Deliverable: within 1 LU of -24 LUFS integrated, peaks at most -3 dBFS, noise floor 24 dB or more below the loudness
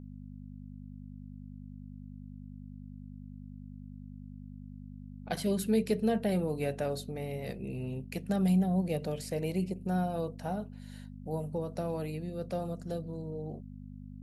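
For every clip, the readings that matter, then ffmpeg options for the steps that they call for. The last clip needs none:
hum 50 Hz; harmonics up to 250 Hz; hum level -44 dBFS; loudness -33.5 LUFS; peak -17.0 dBFS; loudness target -24.0 LUFS
-> -af "bandreject=f=50:t=h:w=4,bandreject=f=100:t=h:w=4,bandreject=f=150:t=h:w=4,bandreject=f=200:t=h:w=4,bandreject=f=250:t=h:w=4"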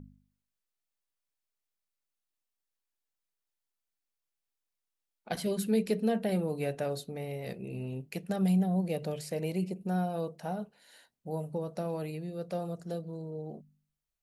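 hum none; loudness -34.0 LUFS; peak -18.0 dBFS; loudness target -24.0 LUFS
-> -af "volume=10dB"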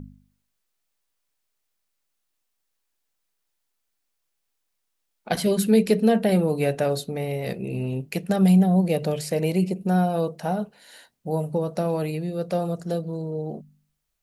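loudness -24.0 LUFS; peak -8.0 dBFS; noise floor -77 dBFS

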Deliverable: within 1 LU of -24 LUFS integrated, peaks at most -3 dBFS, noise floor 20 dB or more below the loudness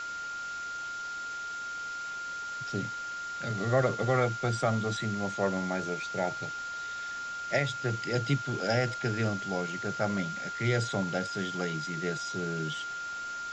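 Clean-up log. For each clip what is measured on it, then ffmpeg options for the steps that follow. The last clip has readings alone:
steady tone 1400 Hz; tone level -35 dBFS; noise floor -38 dBFS; noise floor target -52 dBFS; loudness -32.0 LUFS; peak -13.5 dBFS; loudness target -24.0 LUFS
-> -af "bandreject=f=1.4k:w=30"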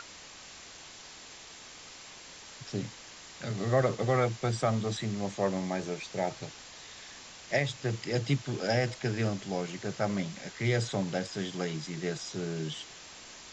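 steady tone none; noise floor -49 dBFS; noise floor target -53 dBFS
-> -af "afftdn=nr=6:nf=-49"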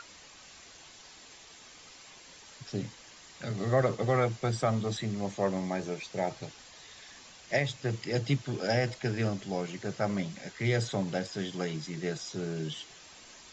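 noise floor -53 dBFS; loudness -32.5 LUFS; peak -14.0 dBFS; loudness target -24.0 LUFS
-> -af "volume=8.5dB"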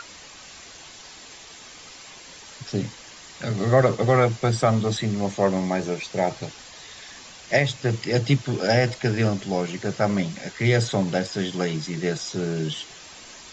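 loudness -24.0 LUFS; peak -5.5 dBFS; noise floor -44 dBFS

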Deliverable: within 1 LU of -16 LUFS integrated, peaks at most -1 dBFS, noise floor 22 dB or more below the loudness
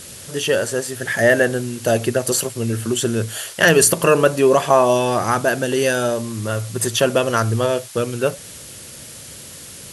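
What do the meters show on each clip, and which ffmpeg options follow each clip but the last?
noise floor -38 dBFS; noise floor target -40 dBFS; loudness -18.0 LUFS; peak -1.5 dBFS; loudness target -16.0 LUFS
-> -af "afftdn=nr=6:nf=-38"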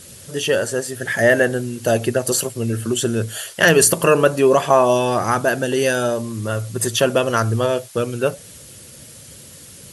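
noise floor -41 dBFS; loudness -18.0 LUFS; peak -1.5 dBFS; loudness target -16.0 LUFS
-> -af "volume=2dB,alimiter=limit=-1dB:level=0:latency=1"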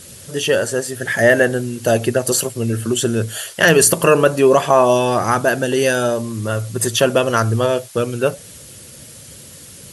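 loudness -16.5 LUFS; peak -1.0 dBFS; noise floor -39 dBFS

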